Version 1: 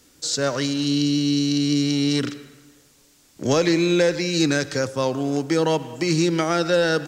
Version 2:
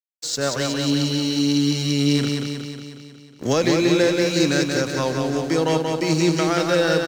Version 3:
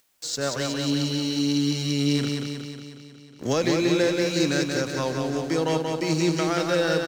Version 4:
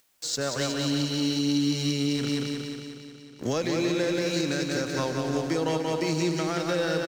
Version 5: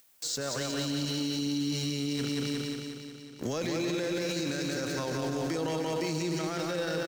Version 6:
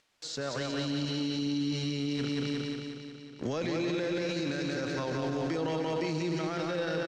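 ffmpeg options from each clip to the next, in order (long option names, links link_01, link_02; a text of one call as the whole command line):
ffmpeg -i in.wav -af "aeval=exprs='sgn(val(0))*max(abs(val(0))-0.0119,0)':channel_layout=same,aecho=1:1:182|364|546|728|910|1092|1274|1456|1638:0.631|0.379|0.227|0.136|0.0818|0.0491|0.0294|0.0177|0.0106" out.wav
ffmpeg -i in.wav -af "acompressor=mode=upward:threshold=-37dB:ratio=2.5,volume=-4dB" out.wav
ffmpeg -i in.wav -af "alimiter=limit=-17dB:level=0:latency=1:release=178,aecho=1:1:297:0.282" out.wav
ffmpeg -i in.wav -af "highshelf=frequency=10000:gain=7.5,alimiter=limit=-23.5dB:level=0:latency=1:release=14" out.wav
ffmpeg -i in.wav -af "lowpass=4200" out.wav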